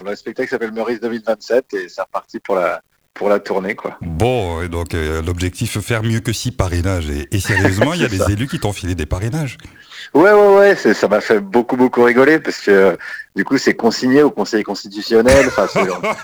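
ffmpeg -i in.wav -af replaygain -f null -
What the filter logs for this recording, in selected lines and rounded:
track_gain = -6.6 dB
track_peak = 0.491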